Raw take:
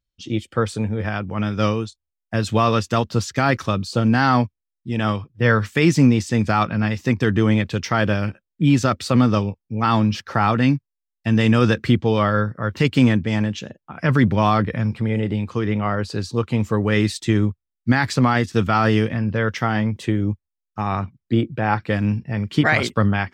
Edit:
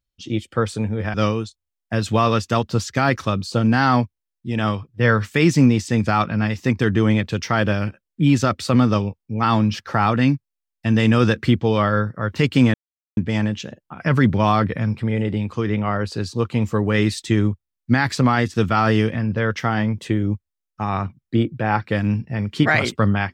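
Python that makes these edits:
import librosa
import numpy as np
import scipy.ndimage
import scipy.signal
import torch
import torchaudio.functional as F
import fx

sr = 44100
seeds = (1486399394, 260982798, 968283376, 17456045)

y = fx.edit(x, sr, fx.cut(start_s=1.14, length_s=0.41),
    fx.insert_silence(at_s=13.15, length_s=0.43), tone=tone)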